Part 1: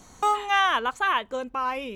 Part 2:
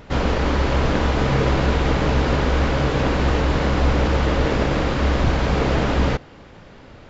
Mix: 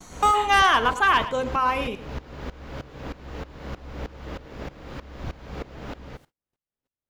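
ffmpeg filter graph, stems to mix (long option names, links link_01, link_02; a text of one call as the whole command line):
ffmpeg -i stem1.wav -i stem2.wav -filter_complex "[0:a]bandreject=frequency=52.37:width_type=h:width=4,bandreject=frequency=104.74:width_type=h:width=4,bandreject=frequency=157.11:width_type=h:width=4,bandreject=frequency=209.48:width_type=h:width=4,bandreject=frequency=261.85:width_type=h:width=4,bandreject=frequency=314.22:width_type=h:width=4,bandreject=frequency=366.59:width_type=h:width=4,bandreject=frequency=418.96:width_type=h:width=4,bandreject=frequency=471.33:width_type=h:width=4,bandreject=frequency=523.7:width_type=h:width=4,bandreject=frequency=576.07:width_type=h:width=4,bandreject=frequency=628.44:width_type=h:width=4,bandreject=frequency=680.81:width_type=h:width=4,bandreject=frequency=733.18:width_type=h:width=4,bandreject=frequency=785.55:width_type=h:width=4,bandreject=frequency=837.92:width_type=h:width=4,bandreject=frequency=890.29:width_type=h:width=4,bandreject=frequency=942.66:width_type=h:width=4,bandreject=frequency=995.03:width_type=h:width=4,bandreject=frequency=1047.4:width_type=h:width=4,aeval=exprs='0.335*(cos(1*acos(clip(val(0)/0.335,-1,1)))-cos(1*PI/2))+0.0376*(cos(5*acos(clip(val(0)/0.335,-1,1)))-cos(5*PI/2))+0.0133*(cos(7*acos(clip(val(0)/0.335,-1,1)))-cos(7*PI/2))':channel_layout=same,volume=3dB,asplit=2[link_01][link_02];[link_02]volume=-14dB[link_03];[1:a]acrusher=bits=7:mix=0:aa=0.000001,aeval=exprs='val(0)*pow(10,-18*if(lt(mod(-3.2*n/s,1),2*abs(-3.2)/1000),1-mod(-3.2*n/s,1)/(2*abs(-3.2)/1000),(mod(-3.2*n/s,1)-2*abs(-3.2)/1000)/(1-2*abs(-3.2)/1000))/20)':channel_layout=same,volume=-12dB[link_04];[link_03]aecho=0:1:108:1[link_05];[link_01][link_04][link_05]amix=inputs=3:normalize=0,agate=range=-34dB:threshold=-53dB:ratio=16:detection=peak" out.wav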